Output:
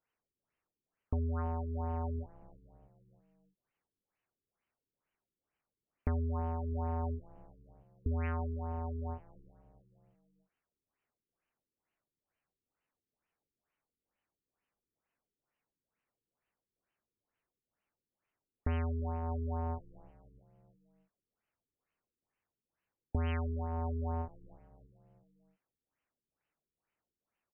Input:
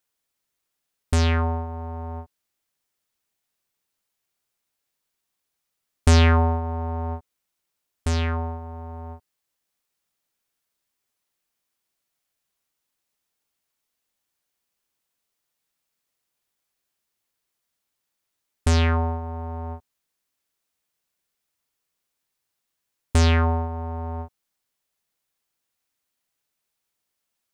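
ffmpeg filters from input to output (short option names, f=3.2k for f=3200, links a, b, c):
-filter_complex "[0:a]acompressor=threshold=-30dB:ratio=12,asplit=5[a][b][c][d][e];[b]adelay=321,afreqshift=-68,volume=-21.5dB[f];[c]adelay=642,afreqshift=-136,volume=-26.2dB[g];[d]adelay=963,afreqshift=-204,volume=-31dB[h];[e]adelay=1284,afreqshift=-272,volume=-35.7dB[i];[a][f][g][h][i]amix=inputs=5:normalize=0,afftfilt=real='re*lt(b*sr/1024,450*pow(3200/450,0.5+0.5*sin(2*PI*2.2*pts/sr)))':imag='im*lt(b*sr/1024,450*pow(3200/450,0.5+0.5*sin(2*PI*2.2*pts/sr)))':win_size=1024:overlap=0.75,volume=-1.5dB"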